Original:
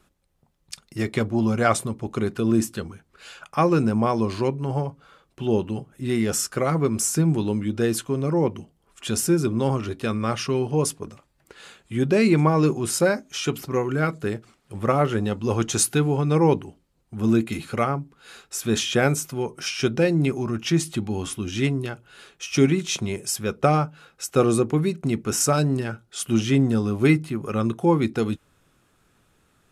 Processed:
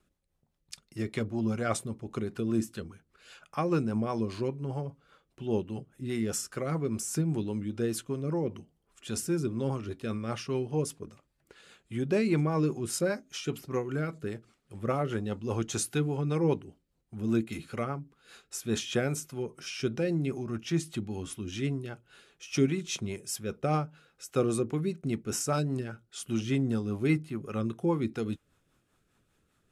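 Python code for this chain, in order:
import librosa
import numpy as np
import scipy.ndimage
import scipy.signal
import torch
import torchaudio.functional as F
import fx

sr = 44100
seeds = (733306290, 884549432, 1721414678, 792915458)

y = fx.rotary(x, sr, hz=5.0)
y = y * librosa.db_to_amplitude(-7.0)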